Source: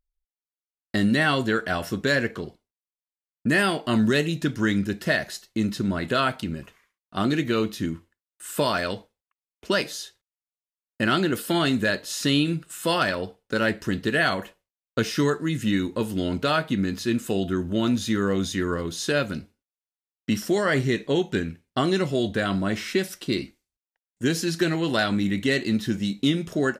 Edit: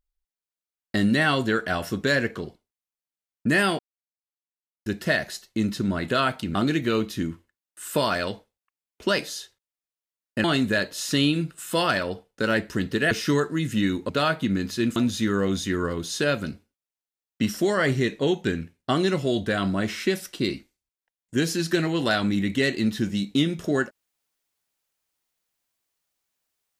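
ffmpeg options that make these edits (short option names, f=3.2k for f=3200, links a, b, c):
-filter_complex "[0:a]asplit=8[a][b][c][d][e][f][g][h];[a]atrim=end=3.79,asetpts=PTS-STARTPTS,afade=t=out:st=3.786:d=0.004:c=hsin[i];[b]atrim=start=3.79:end=4.86,asetpts=PTS-STARTPTS,volume=0[j];[c]atrim=start=4.86:end=6.552,asetpts=PTS-STARTPTS,afade=t=in:d=0.004:c=hsin[k];[d]atrim=start=7.178:end=11.072[l];[e]atrim=start=11.558:end=14.232[m];[f]atrim=start=15.008:end=15.992[n];[g]atrim=start=16.368:end=17.242[o];[h]atrim=start=17.838[p];[i][j][k]concat=n=3:v=0:a=1[q];[q][l]acrossfade=d=0.004:c1=hsin:c2=hsin[r];[r][m]acrossfade=d=0.004:c1=hsin:c2=hsin[s];[s][n]acrossfade=d=0.004:c1=hsin:c2=hsin[t];[t][o]acrossfade=d=0.004:c1=hsin:c2=hsin[u];[u][p]acrossfade=d=0.004:c1=hsin:c2=hsin"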